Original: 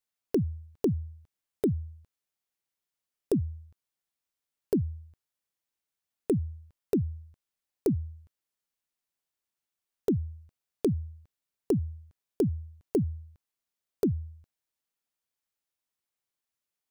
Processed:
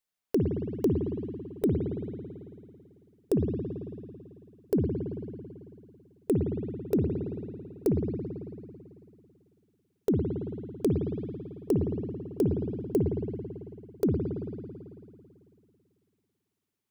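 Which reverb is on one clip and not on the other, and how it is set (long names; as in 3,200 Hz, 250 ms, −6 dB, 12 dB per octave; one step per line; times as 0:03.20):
spring reverb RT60 2.5 s, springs 55 ms, chirp 75 ms, DRR 1 dB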